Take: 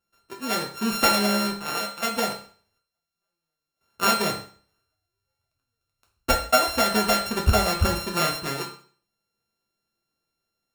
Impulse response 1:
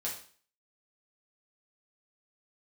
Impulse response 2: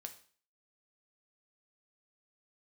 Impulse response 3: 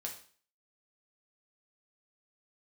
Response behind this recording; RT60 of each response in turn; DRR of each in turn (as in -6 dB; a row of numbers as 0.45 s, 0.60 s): 3; 0.45 s, 0.45 s, 0.45 s; -5.0 dB, 6.0 dB, 0.0 dB